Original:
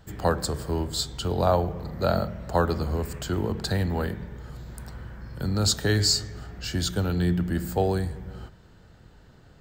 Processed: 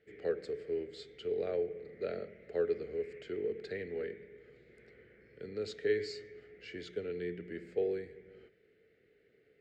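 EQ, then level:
pair of resonant band-passes 960 Hz, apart 2.3 octaves
high-frequency loss of the air 52 metres
0.0 dB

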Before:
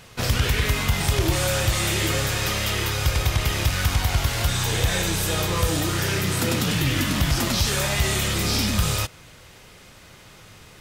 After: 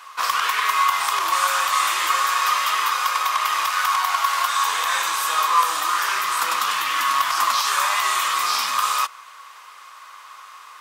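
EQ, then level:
high-pass with resonance 1,100 Hz, resonance Q 11
0.0 dB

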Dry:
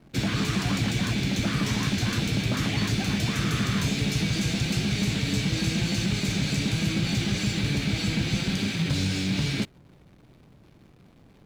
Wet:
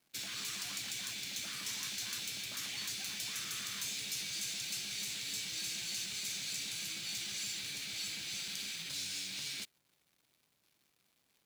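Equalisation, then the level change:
first-order pre-emphasis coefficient 0.97
low-shelf EQ 98 Hz −6 dB
−2.0 dB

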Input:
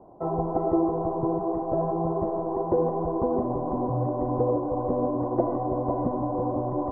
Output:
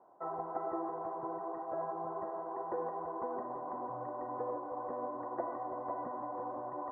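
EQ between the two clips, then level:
resonant band-pass 1,700 Hz, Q 2.9
+5.0 dB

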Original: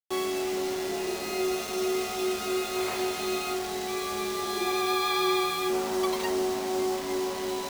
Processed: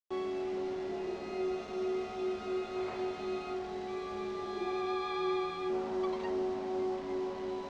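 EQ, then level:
high-frequency loss of the air 150 metres
tilt shelving filter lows +4 dB, about 1,200 Hz
−8.5 dB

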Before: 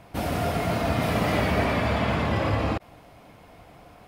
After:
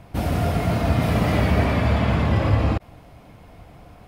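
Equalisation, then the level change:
low-shelf EQ 180 Hz +10.5 dB
0.0 dB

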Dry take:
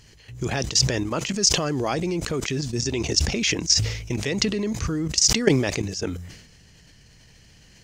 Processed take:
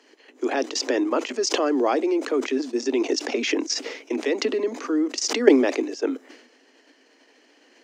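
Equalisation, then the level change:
Butterworth high-pass 250 Hz 96 dB per octave
low-pass filter 1,100 Hz 6 dB per octave
+6.0 dB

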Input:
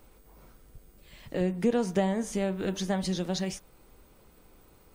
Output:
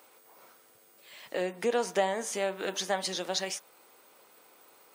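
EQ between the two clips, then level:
high-pass filter 570 Hz 12 dB per octave
+4.5 dB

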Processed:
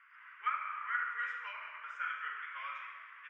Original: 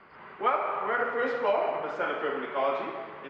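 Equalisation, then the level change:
high-pass filter 1,200 Hz 24 dB per octave
phaser with its sweep stopped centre 1,800 Hz, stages 4
−2.5 dB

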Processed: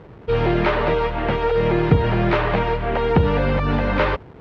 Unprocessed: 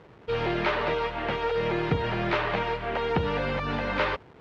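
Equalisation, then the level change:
spectral tilt −2 dB per octave
+6.0 dB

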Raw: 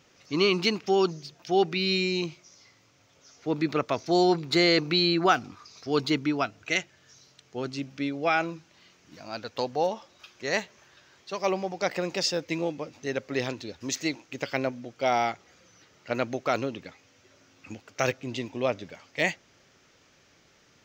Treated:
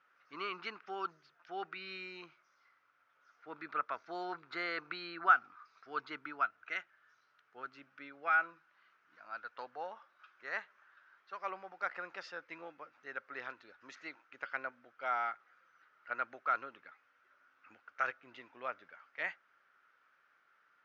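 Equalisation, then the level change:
resonant band-pass 1,400 Hz, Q 5
high-frequency loss of the air 90 metres
+2.0 dB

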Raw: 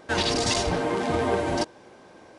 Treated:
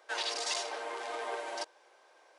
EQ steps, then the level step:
Bessel high-pass filter 700 Hz, order 6
−8.0 dB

